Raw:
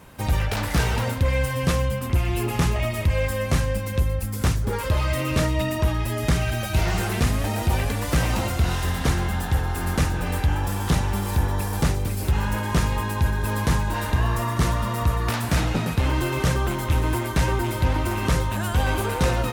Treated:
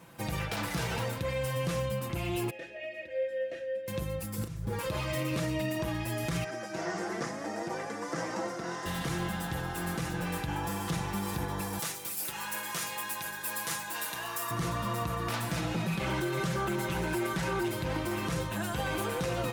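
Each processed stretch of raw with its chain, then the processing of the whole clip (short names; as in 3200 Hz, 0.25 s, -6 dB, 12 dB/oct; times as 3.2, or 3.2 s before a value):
2.5–3.88 vowel filter e + comb 3.2 ms, depth 74%
4.38–4.79 auto swell 0.547 s + low shelf 220 Hz +11.5 dB + doubler 37 ms -7 dB
6.44–8.86 Chebyshev band-pass 300–5200 Hz + band shelf 3200 Hz -12 dB 1.1 oct
11.79–14.51 HPF 1200 Hz 6 dB/oct + high shelf 7200 Hz +11 dB
15.85–17.69 comb 5.2 ms, depth 95% + Doppler distortion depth 0.19 ms
whole clip: HPF 100 Hz 12 dB/oct; comb 6 ms, depth 57%; limiter -16.5 dBFS; gain -6.5 dB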